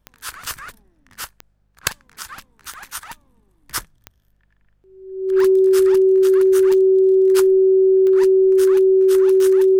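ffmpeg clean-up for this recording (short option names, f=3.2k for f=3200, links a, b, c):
-af "adeclick=t=4,bandreject=f=50:t=h:w=4,bandreject=f=100:t=h:w=4,bandreject=f=150:t=h:w=4,bandreject=f=200:t=h:w=4,bandreject=f=380:w=30"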